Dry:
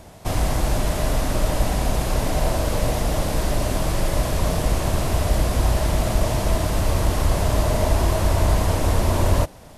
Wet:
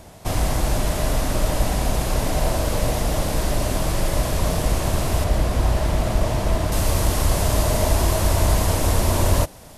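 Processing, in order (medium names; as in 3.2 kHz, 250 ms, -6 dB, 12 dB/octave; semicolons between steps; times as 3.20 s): treble shelf 4.5 kHz +2.5 dB, from 5.24 s -4.5 dB, from 6.72 s +7.5 dB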